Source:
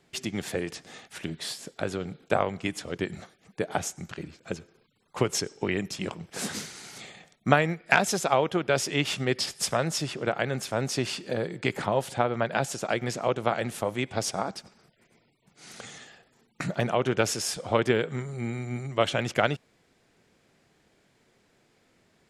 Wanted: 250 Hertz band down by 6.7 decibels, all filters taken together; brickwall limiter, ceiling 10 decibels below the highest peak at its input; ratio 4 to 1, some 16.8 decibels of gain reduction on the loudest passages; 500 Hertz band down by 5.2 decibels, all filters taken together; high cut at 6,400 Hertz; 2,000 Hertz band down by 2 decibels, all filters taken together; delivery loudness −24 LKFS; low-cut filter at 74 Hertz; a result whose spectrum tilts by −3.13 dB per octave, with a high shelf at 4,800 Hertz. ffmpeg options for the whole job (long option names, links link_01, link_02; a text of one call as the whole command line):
ffmpeg -i in.wav -af "highpass=74,lowpass=6400,equalizer=frequency=250:width_type=o:gain=-8,equalizer=frequency=500:width_type=o:gain=-4.5,equalizer=frequency=2000:width_type=o:gain=-3.5,highshelf=frequency=4800:gain=7,acompressor=threshold=-38dB:ratio=4,volume=18dB,alimiter=limit=-9dB:level=0:latency=1" out.wav